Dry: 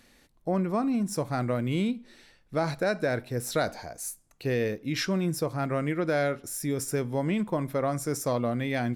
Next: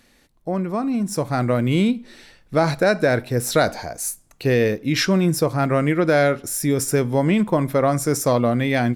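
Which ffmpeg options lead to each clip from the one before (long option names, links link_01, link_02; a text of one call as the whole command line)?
ffmpeg -i in.wav -af "dynaudnorm=framelen=810:gausssize=3:maxgain=7dB,volume=2.5dB" out.wav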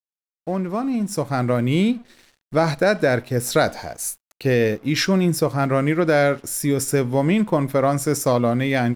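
ffmpeg -i in.wav -af "aeval=exprs='sgn(val(0))*max(abs(val(0))-0.00501,0)':channel_layout=same" out.wav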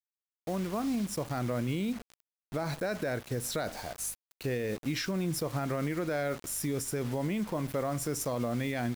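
ffmpeg -i in.wav -af "aeval=exprs='val(0)+0.00447*(sin(2*PI*50*n/s)+sin(2*PI*2*50*n/s)/2+sin(2*PI*3*50*n/s)/3+sin(2*PI*4*50*n/s)/4+sin(2*PI*5*50*n/s)/5)':channel_layout=same,acrusher=bits=5:mix=0:aa=0.000001,alimiter=limit=-16dB:level=0:latency=1:release=75,volume=-8dB" out.wav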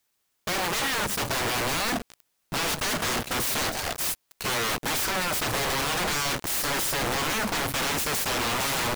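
ffmpeg -i in.wav -af "aeval=exprs='0.0668*sin(PI/2*7.94*val(0)/0.0668)':channel_layout=same" out.wav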